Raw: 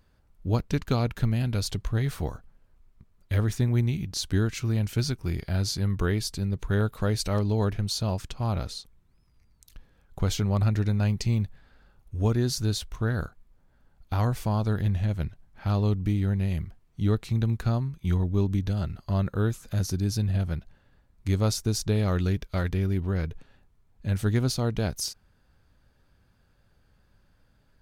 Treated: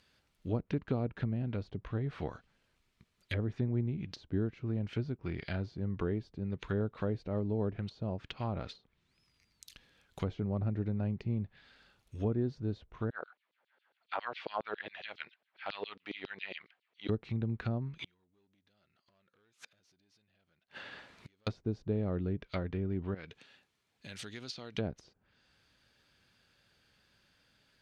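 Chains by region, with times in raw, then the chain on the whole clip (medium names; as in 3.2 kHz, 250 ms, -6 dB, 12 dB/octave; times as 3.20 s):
13.10–17.09 s: LFO high-pass saw down 7.3 Hz 390–5400 Hz + distance through air 380 m
17.99–21.47 s: compression 20:1, threshold -34 dBFS + overdrive pedal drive 31 dB, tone 1.5 kHz, clips at -18 dBFS + inverted gate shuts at -29 dBFS, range -38 dB
23.14–24.78 s: high-pass 220 Hz 6 dB/octave + compression 4:1, threshold -39 dBFS
whole clip: frequency weighting D; low-pass that closes with the level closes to 600 Hz, closed at -25 dBFS; trim -4 dB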